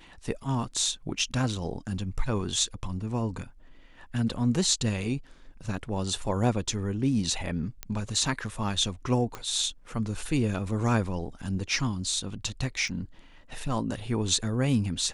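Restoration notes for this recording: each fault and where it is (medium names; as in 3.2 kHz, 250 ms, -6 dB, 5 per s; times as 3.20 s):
1.19 s: dropout 3.7 ms
7.83 s: pop -16 dBFS
9.35 s: pop -20 dBFS
12.88 s: dropout 3.1 ms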